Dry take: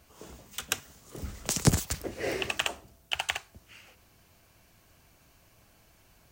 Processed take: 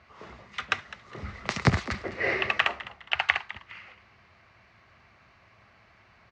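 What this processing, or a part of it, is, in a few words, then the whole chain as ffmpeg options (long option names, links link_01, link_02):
frequency-shifting delay pedal into a guitar cabinet: -filter_complex "[0:a]asplit=4[link_01][link_02][link_03][link_04];[link_02]adelay=206,afreqshift=110,volume=-16.5dB[link_05];[link_03]adelay=412,afreqshift=220,volume=-26.1dB[link_06];[link_04]adelay=618,afreqshift=330,volume=-35.8dB[link_07];[link_01][link_05][link_06][link_07]amix=inputs=4:normalize=0,highpass=81,equalizer=frequency=160:width_type=q:width=4:gain=-6,equalizer=frequency=290:width_type=q:width=4:gain=-9,equalizer=frequency=470:width_type=q:width=4:gain=-4,equalizer=frequency=1200:width_type=q:width=4:gain=7,equalizer=frequency=2000:width_type=q:width=4:gain=9,equalizer=frequency=3200:width_type=q:width=4:gain=-5,lowpass=frequency=4100:width=0.5412,lowpass=frequency=4100:width=1.3066,volume=4dB"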